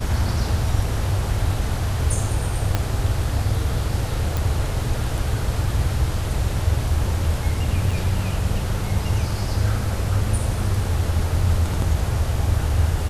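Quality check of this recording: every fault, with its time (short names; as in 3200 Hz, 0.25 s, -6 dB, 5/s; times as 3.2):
2.75 pop -6 dBFS
4.37 pop
7.91 gap 4.5 ms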